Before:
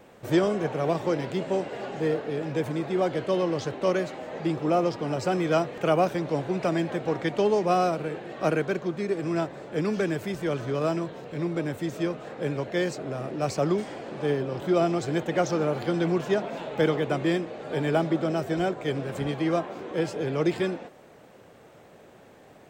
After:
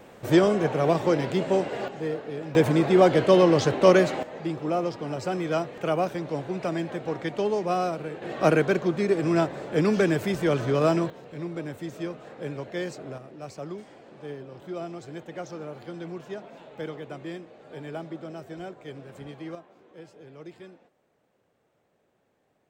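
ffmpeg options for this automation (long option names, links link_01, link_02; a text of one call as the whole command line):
ffmpeg -i in.wav -af "asetnsamples=nb_out_samples=441:pad=0,asendcmd='1.88 volume volume -4dB;2.55 volume volume 8dB;4.23 volume volume -3dB;8.22 volume volume 4.5dB;11.1 volume volume -5dB;13.18 volume volume -12dB;19.55 volume volume -19dB',volume=3.5dB" out.wav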